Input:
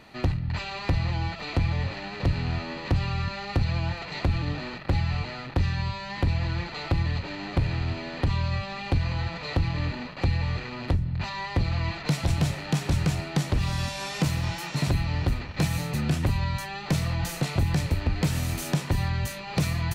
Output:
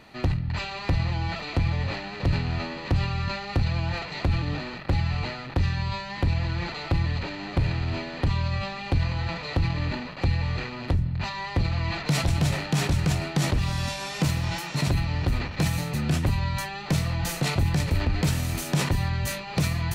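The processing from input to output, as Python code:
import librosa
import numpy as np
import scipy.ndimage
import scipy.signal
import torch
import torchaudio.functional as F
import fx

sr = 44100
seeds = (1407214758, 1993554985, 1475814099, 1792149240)

y = fx.sustainer(x, sr, db_per_s=63.0)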